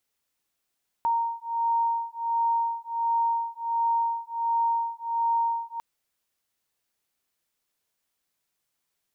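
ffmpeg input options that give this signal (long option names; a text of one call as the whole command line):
ffmpeg -f lavfi -i "aevalsrc='0.0473*(sin(2*PI*926*t)+sin(2*PI*927.4*t))':duration=4.75:sample_rate=44100" out.wav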